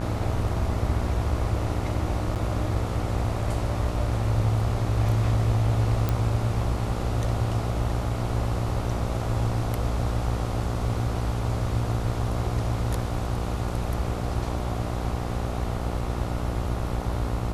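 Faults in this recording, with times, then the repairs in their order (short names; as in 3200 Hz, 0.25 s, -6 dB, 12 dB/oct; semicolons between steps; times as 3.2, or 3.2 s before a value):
buzz 60 Hz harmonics 24 -30 dBFS
2.35–2.36 gap 8.1 ms
6.09 pop -12 dBFS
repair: de-click; de-hum 60 Hz, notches 24; interpolate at 2.35, 8.1 ms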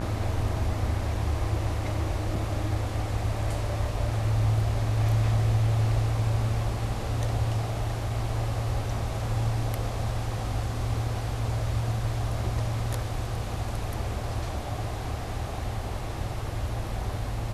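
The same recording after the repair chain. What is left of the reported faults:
none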